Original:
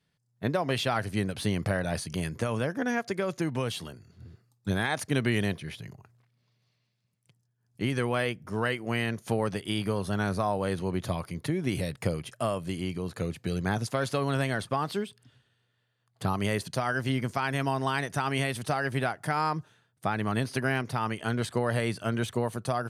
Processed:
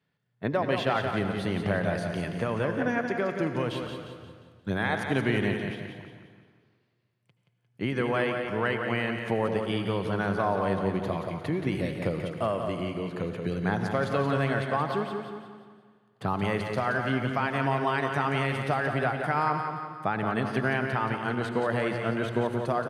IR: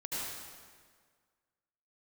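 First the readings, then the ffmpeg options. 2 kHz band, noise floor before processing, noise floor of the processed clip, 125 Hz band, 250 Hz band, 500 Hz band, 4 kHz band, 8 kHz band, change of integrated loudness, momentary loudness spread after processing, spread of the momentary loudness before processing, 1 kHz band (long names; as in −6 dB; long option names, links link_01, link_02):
+2.0 dB, −75 dBFS, −71 dBFS, −0.5 dB, +1.5 dB, +3.0 dB, −2.5 dB, below −10 dB, +1.5 dB, 7 LU, 6 LU, +2.5 dB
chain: -filter_complex "[0:a]highpass=87,bass=frequency=250:gain=-3,treble=frequency=4000:gain=-15,aecho=1:1:176|352|528|704|880:0.473|0.199|0.0835|0.0351|0.0147,asplit=2[link_01][link_02];[1:a]atrim=start_sample=2205[link_03];[link_02][link_03]afir=irnorm=-1:irlink=0,volume=-10dB[link_04];[link_01][link_04]amix=inputs=2:normalize=0"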